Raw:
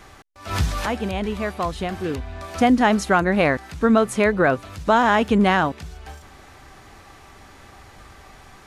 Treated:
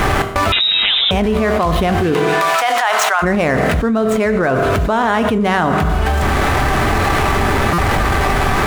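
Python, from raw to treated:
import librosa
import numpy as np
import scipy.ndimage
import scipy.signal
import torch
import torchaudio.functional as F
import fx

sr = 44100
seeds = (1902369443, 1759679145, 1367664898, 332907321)

y = scipy.ndimage.median_filter(x, 9, mode='constant')
y = fx.highpass(y, sr, hz=760.0, slope=24, at=(2.13, 3.22), fade=0.02)
y = fx.rev_fdn(y, sr, rt60_s=0.9, lf_ratio=1.05, hf_ratio=0.75, size_ms=14.0, drr_db=10.0)
y = fx.freq_invert(y, sr, carrier_hz=3800, at=(0.52, 1.11))
y = fx.buffer_glitch(y, sr, at_s=(7.73,), block=256, repeats=8)
y = fx.env_flatten(y, sr, amount_pct=100)
y = F.gain(torch.from_numpy(y), -3.0).numpy()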